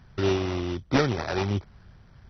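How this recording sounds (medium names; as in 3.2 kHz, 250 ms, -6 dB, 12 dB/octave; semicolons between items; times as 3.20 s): aliases and images of a low sample rate 3.2 kHz, jitter 20%; MP2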